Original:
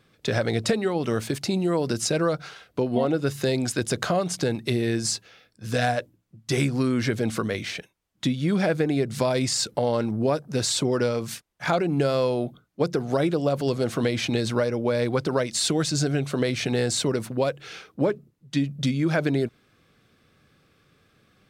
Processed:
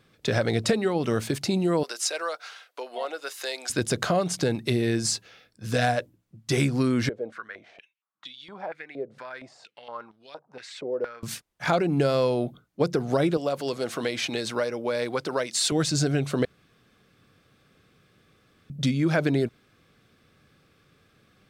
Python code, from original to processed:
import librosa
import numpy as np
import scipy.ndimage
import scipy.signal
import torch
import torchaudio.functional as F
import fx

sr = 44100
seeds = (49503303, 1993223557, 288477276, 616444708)

y = fx.bessel_highpass(x, sr, hz=820.0, order=4, at=(1.83, 3.7))
y = fx.filter_held_bandpass(y, sr, hz=4.3, low_hz=520.0, high_hz=3500.0, at=(7.09, 11.23))
y = fx.highpass(y, sr, hz=530.0, slope=6, at=(13.37, 15.72))
y = fx.edit(y, sr, fx.room_tone_fill(start_s=16.45, length_s=2.25), tone=tone)